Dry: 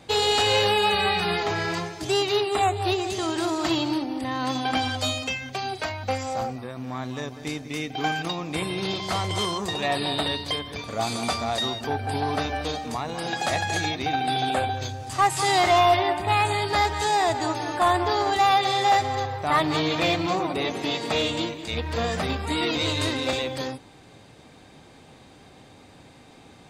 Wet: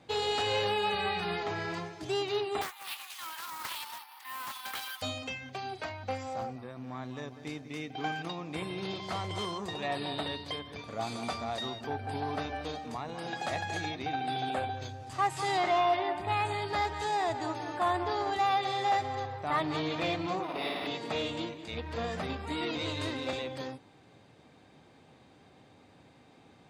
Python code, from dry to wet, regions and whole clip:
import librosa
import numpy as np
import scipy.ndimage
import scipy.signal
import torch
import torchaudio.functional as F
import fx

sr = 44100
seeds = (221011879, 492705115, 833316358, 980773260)

y = fx.chain(x, sr, fx.steep_highpass(hz=860.0, slope=96),
    fx.resample_bad(factor=3, down='none', up='zero_stuff'),
    fx.doppler_dist(depth_ms=0.74), at=(2.61, 5.02))
y = fx.chain(y, sr, fx.highpass(hz=130.0, slope=24),
    fx.peak_eq(hz=11000.0, db=-7.0, octaves=1.3), at=(15.57, 16.15))
y = fx.chain(y, sr, fx.tilt_eq(slope=3.0),
    fx.room_flutter(wall_m=9.1, rt60_s=1.4),
    fx.resample_linear(factor=6), at=(20.43, 20.87))
y = scipy.signal.sosfilt(scipy.signal.butter(2, 76.0, 'highpass', fs=sr, output='sos'), y)
y = fx.high_shelf(y, sr, hz=5300.0, db=-9.5)
y = F.gain(torch.from_numpy(y), -8.0).numpy()